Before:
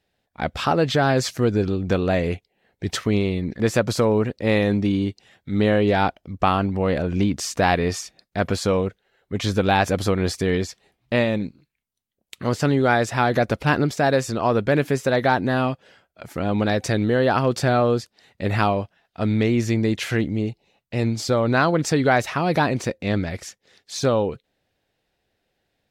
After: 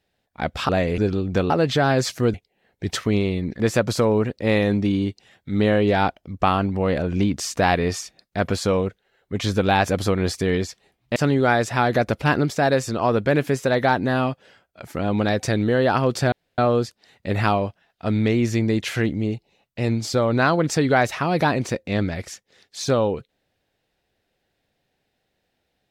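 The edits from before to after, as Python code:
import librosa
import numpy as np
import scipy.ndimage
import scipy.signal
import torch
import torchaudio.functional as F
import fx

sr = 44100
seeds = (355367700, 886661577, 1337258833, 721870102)

y = fx.edit(x, sr, fx.swap(start_s=0.69, length_s=0.84, other_s=2.05, other_length_s=0.29),
    fx.cut(start_s=11.16, length_s=1.41),
    fx.insert_room_tone(at_s=17.73, length_s=0.26), tone=tone)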